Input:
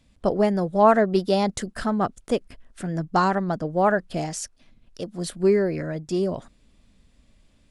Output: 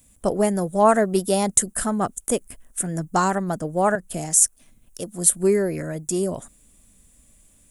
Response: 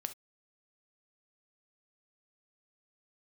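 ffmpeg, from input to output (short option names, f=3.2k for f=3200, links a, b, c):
-filter_complex "[0:a]asettb=1/sr,asplit=3[a][b][c];[a]atrim=end=3.954[d];[b]atrim=start=3.95:end=4.41,asetpts=PTS-STARTPTS,afade=t=in:d=0.004:c=qsin,afade=t=out:st=0.456:d=0.004:c=qsin,acrossover=split=180[e][f];[f]acompressor=threshold=-28dB:ratio=4[g];[e][g]amix=inputs=2:normalize=0[h];[c]atrim=start=4.406[i];[d][h]acrossfade=d=0.004:c1=hsin:c2=qsin[j];[j][i]acrossfade=d=0.004:c1=qsin:c2=hsin,aexciter=amount=14.7:drive=3.7:freq=6.9k"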